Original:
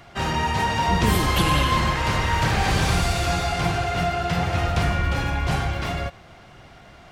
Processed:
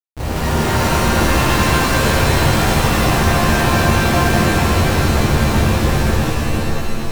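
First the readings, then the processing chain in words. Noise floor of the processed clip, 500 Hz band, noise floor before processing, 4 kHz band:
-21 dBFS, +9.0 dB, -47 dBFS, +6.0 dB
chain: Schmitt trigger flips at -21.5 dBFS; pitch-shifted reverb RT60 3.3 s, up +7 st, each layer -2 dB, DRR -10 dB; trim -4.5 dB

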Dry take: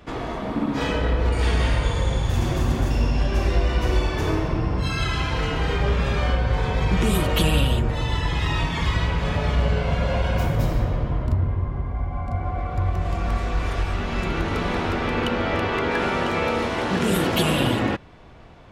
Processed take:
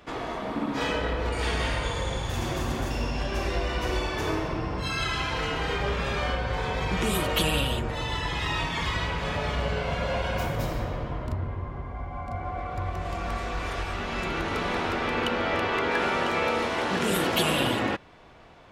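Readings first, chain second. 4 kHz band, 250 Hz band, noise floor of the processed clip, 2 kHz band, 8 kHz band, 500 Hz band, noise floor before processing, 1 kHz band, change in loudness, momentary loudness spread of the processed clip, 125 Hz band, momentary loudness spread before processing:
-1.0 dB, -6.0 dB, -37 dBFS, -1.0 dB, -1.0 dB, -3.0 dB, -30 dBFS, -1.5 dB, -5.0 dB, 8 LU, -9.0 dB, 5 LU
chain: bass shelf 260 Hz -9.5 dB; trim -1 dB

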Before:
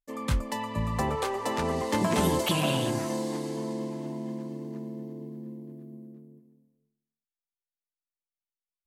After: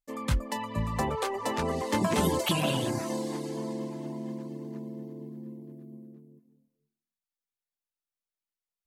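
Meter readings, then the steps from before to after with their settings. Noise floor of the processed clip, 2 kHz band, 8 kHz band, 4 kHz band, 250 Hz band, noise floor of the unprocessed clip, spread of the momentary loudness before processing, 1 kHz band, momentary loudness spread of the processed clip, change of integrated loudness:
under -85 dBFS, -1.0 dB, -1.0 dB, -1.0 dB, -1.5 dB, under -85 dBFS, 17 LU, -1.0 dB, 17 LU, -1.0 dB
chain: reverb removal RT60 0.5 s

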